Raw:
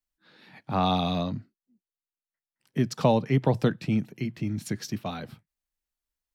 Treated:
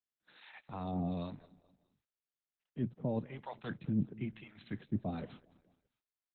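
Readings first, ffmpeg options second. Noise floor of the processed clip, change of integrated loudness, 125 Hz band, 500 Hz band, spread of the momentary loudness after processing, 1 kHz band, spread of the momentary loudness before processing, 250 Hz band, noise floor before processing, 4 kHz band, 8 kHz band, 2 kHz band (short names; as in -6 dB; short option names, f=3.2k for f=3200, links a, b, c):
under -85 dBFS, -12.0 dB, -12.0 dB, -15.0 dB, 19 LU, -17.0 dB, 12 LU, -10.0 dB, under -85 dBFS, -21.5 dB, under -35 dB, -12.5 dB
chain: -filter_complex "[0:a]agate=range=-20dB:threshold=-58dB:ratio=16:detection=peak,areverse,acompressor=threshold=-30dB:ratio=8,areverse,acrossover=split=660[a][b];[a]aeval=exprs='val(0)*(1-1/2+1/2*cos(2*PI*1*n/s))':c=same[c];[b]aeval=exprs='val(0)*(1-1/2-1/2*cos(2*PI*1*n/s))':c=same[d];[c][d]amix=inputs=2:normalize=0,aecho=1:1:205|410|615:0.1|0.041|0.0168,volume=2dB" -ar 48000 -c:a libopus -b:a 8k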